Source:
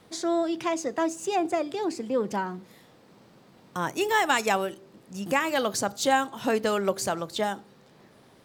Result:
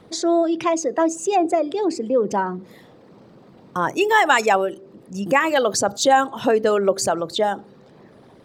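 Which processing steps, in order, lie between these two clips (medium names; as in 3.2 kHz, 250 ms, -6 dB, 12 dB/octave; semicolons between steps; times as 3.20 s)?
resonances exaggerated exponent 1.5; trim +7.5 dB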